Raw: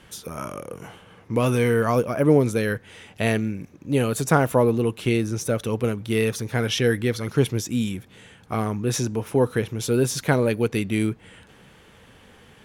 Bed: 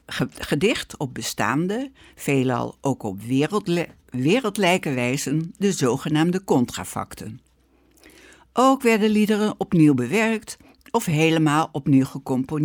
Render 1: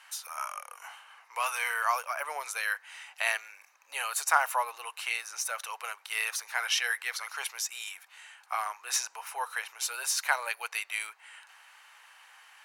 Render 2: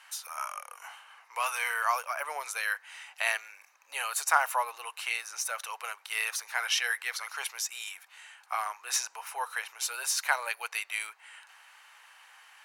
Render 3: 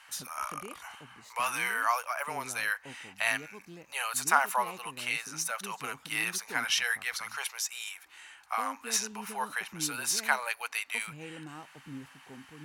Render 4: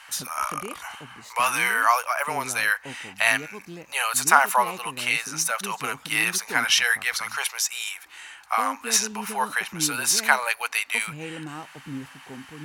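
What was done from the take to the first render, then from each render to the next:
steep high-pass 820 Hz 36 dB/octave; band-stop 3.4 kHz, Q 7.2
no audible change
add bed -26.5 dB
trim +8.5 dB; peak limiter -2 dBFS, peak gain reduction 1 dB

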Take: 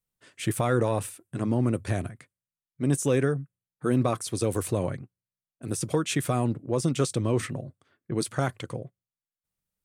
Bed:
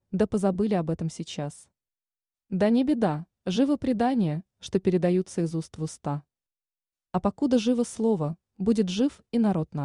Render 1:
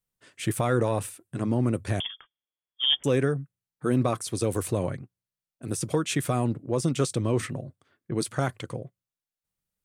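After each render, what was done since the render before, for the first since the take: 2.00–3.04 s: frequency inversion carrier 3.4 kHz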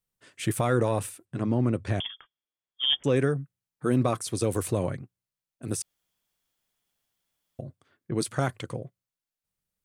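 1.25–3.16 s: distance through air 73 m; 5.82–7.59 s: room tone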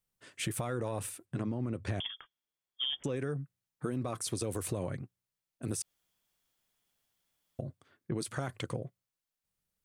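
peak limiter -19.5 dBFS, peak gain reduction 7 dB; compression, threshold -31 dBFS, peak gain reduction 8 dB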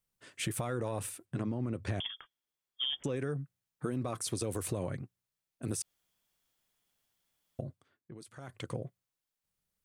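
7.60–8.81 s: dip -14 dB, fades 0.43 s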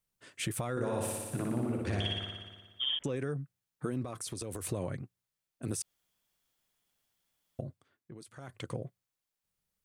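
0.71–2.99 s: flutter echo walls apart 10.2 m, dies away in 1.4 s; 4.02–4.63 s: compression, threshold -35 dBFS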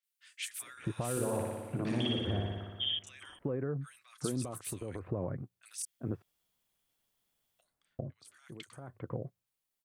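three bands offset in time mids, highs, lows 30/400 ms, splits 1.6/6 kHz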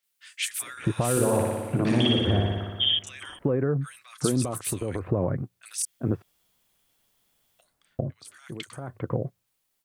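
trim +10.5 dB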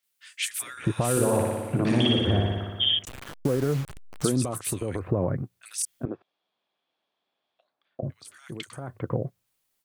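3.05–4.26 s: send-on-delta sampling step -33 dBFS; 6.05–8.03 s: cabinet simulation 400–3400 Hz, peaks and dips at 460 Hz -4 dB, 960 Hz -3 dB, 1.4 kHz -6 dB, 2 kHz -9 dB, 2.9 kHz -7 dB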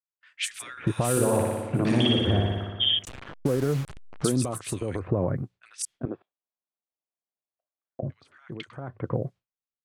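gate with hold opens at -46 dBFS; level-controlled noise filter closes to 1.3 kHz, open at -23.5 dBFS

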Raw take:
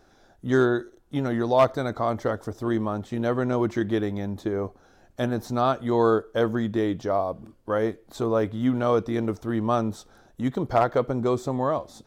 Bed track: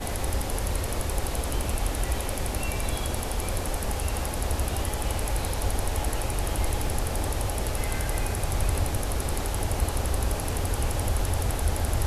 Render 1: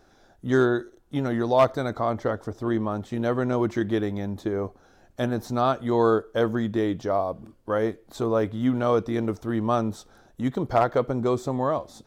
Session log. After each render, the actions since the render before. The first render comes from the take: 2.00–2.91 s: treble shelf 6.7 kHz -8.5 dB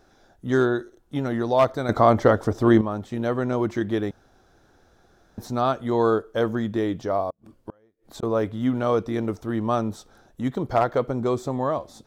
1.89–2.81 s: gain +9 dB; 4.11–5.38 s: room tone; 7.30–8.23 s: inverted gate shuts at -23 dBFS, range -36 dB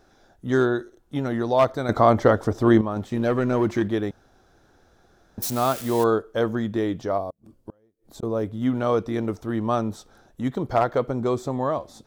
2.96–3.88 s: waveshaping leveller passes 1; 5.42–6.04 s: zero-crossing glitches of -22 dBFS; 7.18–8.62 s: peaking EQ 1.8 kHz -8 dB 2.9 oct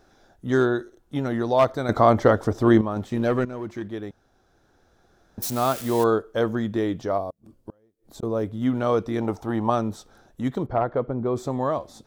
3.45–5.80 s: fade in, from -13 dB; 9.21–9.70 s: peaking EQ 830 Hz +13.5 dB 0.52 oct; 10.66–11.36 s: tape spacing loss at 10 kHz 37 dB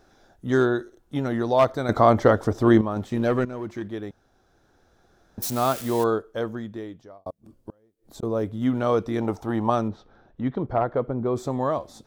5.73–7.26 s: fade out; 9.88–10.68 s: distance through air 280 m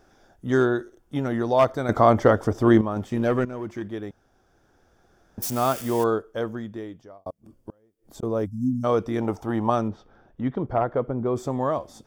8.46–8.84 s: spectral selection erased 270–4900 Hz; band-stop 4 kHz, Q 6.7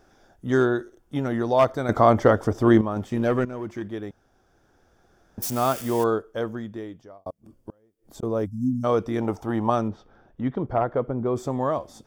no audible change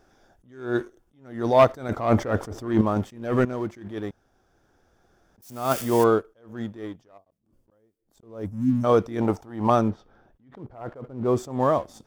waveshaping leveller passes 1; attacks held to a fixed rise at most 120 dB/s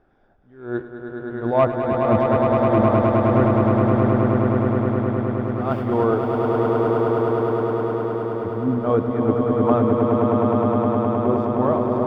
distance through air 440 m; echo with a slow build-up 104 ms, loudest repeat 8, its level -5 dB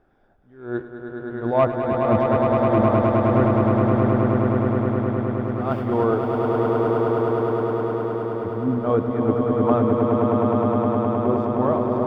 trim -1 dB

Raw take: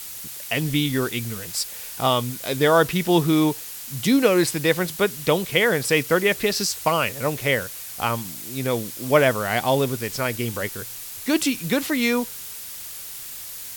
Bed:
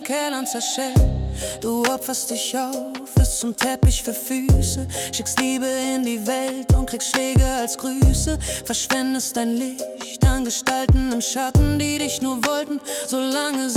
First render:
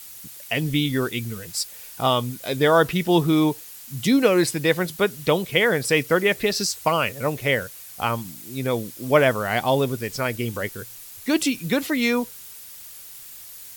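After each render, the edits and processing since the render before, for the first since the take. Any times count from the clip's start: noise reduction 7 dB, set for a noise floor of -36 dBFS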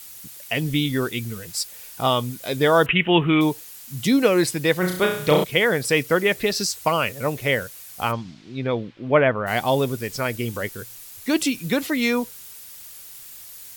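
2.86–3.41 s: FFT filter 700 Hz 0 dB, 3 kHz +14 dB, 4.6 kHz -29 dB; 4.79–5.44 s: flutter echo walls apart 5.7 m, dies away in 0.57 s; 8.11–9.46 s: low-pass 5.4 kHz -> 2.4 kHz 24 dB/octave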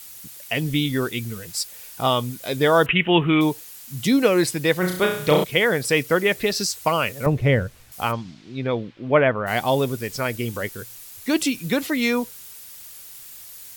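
7.26–7.92 s: RIAA curve playback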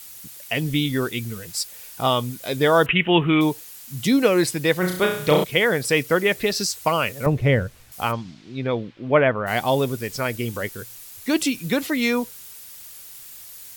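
no audible change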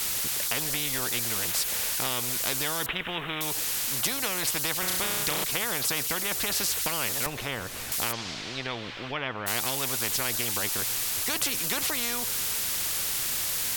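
compression 2:1, threshold -26 dBFS, peak gain reduction 8.5 dB; spectrum-flattening compressor 4:1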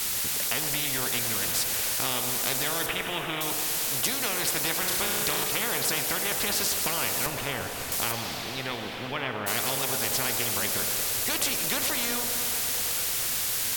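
band-passed feedback delay 114 ms, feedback 84%, band-pass 620 Hz, level -8 dB; plate-style reverb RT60 3.8 s, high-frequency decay 0.8×, DRR 6 dB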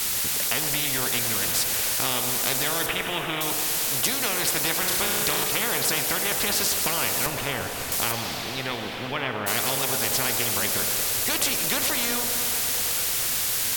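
trim +3 dB

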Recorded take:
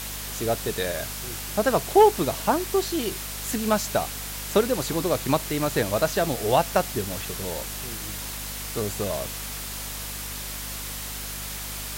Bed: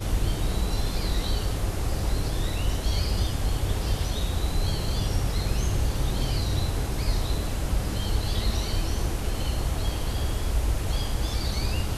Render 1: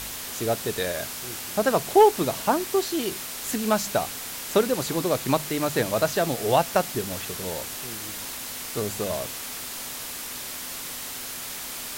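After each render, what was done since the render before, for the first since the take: de-hum 50 Hz, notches 4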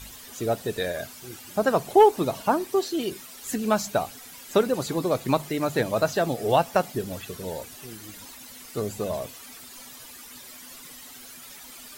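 noise reduction 13 dB, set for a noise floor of -35 dBFS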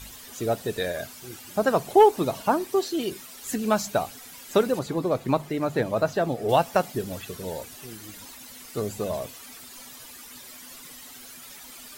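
4.79–6.49 s: treble shelf 2.8 kHz -9 dB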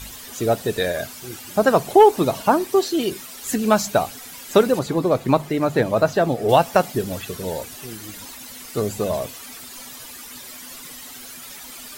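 trim +6 dB; peak limiter -3 dBFS, peak gain reduction 2.5 dB

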